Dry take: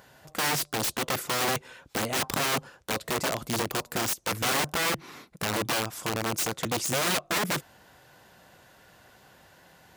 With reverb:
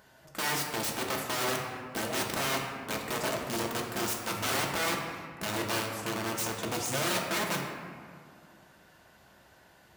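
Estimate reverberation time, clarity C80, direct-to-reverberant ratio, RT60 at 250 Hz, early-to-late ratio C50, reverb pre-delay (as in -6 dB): 2.1 s, 4.5 dB, -0.5 dB, 2.6 s, 3.0 dB, 3 ms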